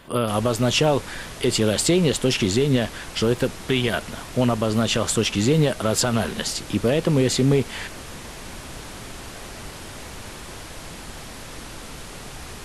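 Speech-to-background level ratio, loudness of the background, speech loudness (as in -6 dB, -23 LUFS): 15.5 dB, -37.0 LUFS, -21.5 LUFS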